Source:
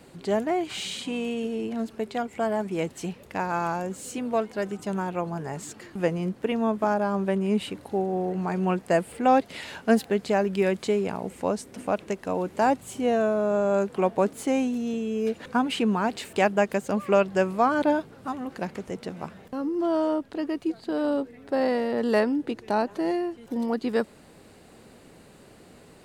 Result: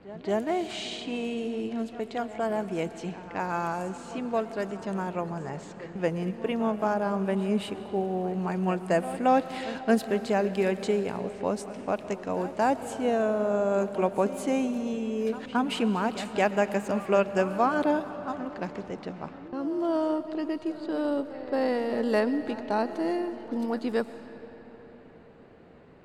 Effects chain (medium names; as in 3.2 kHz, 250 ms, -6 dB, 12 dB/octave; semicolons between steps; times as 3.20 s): pre-echo 224 ms -15.5 dB; level-controlled noise filter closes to 1.9 kHz, open at -23.5 dBFS; algorithmic reverb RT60 4.6 s, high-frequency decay 0.65×, pre-delay 75 ms, DRR 12 dB; trim -2.5 dB